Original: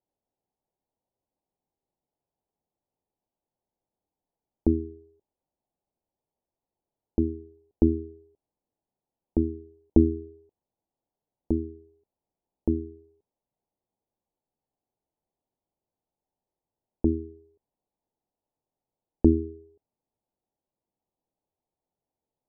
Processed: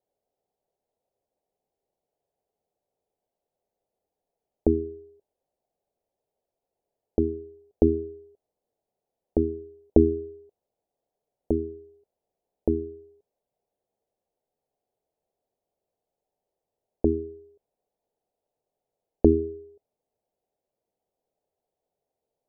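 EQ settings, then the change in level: band shelf 540 Hz +9.5 dB 1.1 oct; -1.0 dB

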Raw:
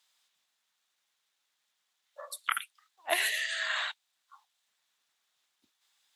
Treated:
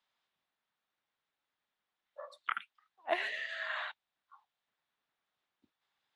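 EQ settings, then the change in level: tape spacing loss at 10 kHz 33 dB; low shelf 410 Hz +4.5 dB; 0.0 dB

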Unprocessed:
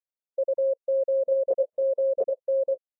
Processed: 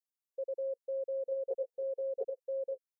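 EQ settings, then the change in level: low shelf 440 Hz -7.5 dB; fixed phaser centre 300 Hz, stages 6; fixed phaser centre 610 Hz, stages 6; 0.0 dB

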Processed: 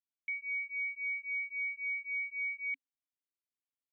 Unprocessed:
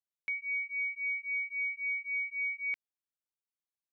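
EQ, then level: vowel filter i; +3.5 dB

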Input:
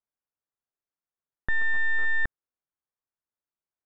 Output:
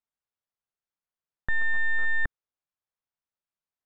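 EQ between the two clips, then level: air absorption 99 m; bell 320 Hz -5 dB 0.85 oct; 0.0 dB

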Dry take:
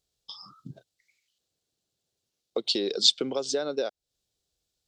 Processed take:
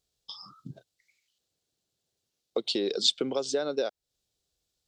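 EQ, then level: dynamic EQ 5100 Hz, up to -6 dB, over -36 dBFS, Q 1.2; 0.0 dB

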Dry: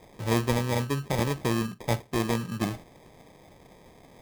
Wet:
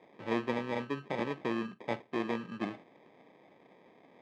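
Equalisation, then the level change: Chebyshev band-pass 250–2600 Hz, order 2; -5.0 dB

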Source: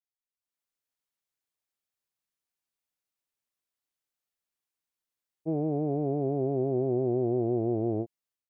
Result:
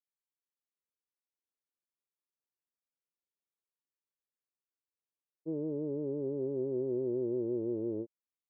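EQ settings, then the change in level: band-pass 490 Hz, Q 0.73; Butterworth band-stop 720 Hz, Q 2.5; air absorption 420 m; -3.5 dB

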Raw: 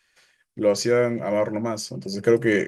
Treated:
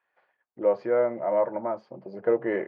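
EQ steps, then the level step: band-pass 790 Hz, Q 2.1; air absorption 390 m; +5.0 dB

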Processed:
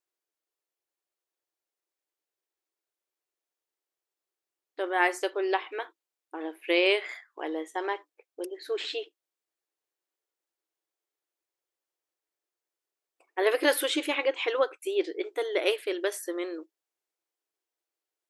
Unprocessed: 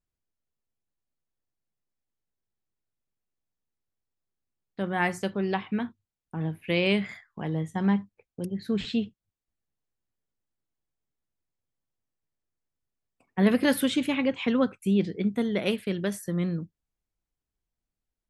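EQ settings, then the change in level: brick-wall FIR high-pass 300 Hz; +2.5 dB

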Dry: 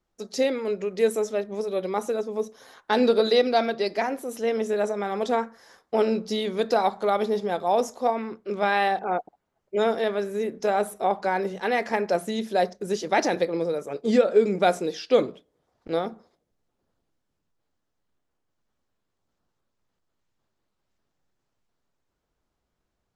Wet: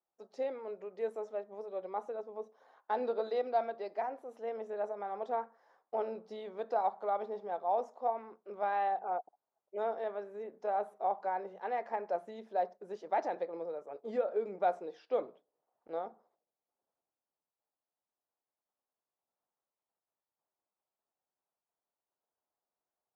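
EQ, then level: band-pass 780 Hz, Q 1.7; -7.5 dB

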